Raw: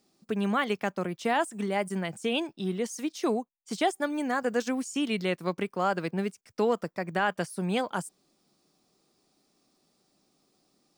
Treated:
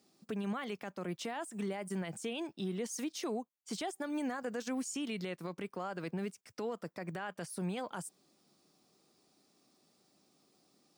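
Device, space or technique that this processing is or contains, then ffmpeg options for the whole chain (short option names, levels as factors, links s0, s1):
podcast mastering chain: -af "highpass=87,acompressor=threshold=0.0251:ratio=3,alimiter=level_in=1.78:limit=0.0631:level=0:latency=1:release=31,volume=0.562" -ar 44100 -c:a libmp3lame -b:a 96k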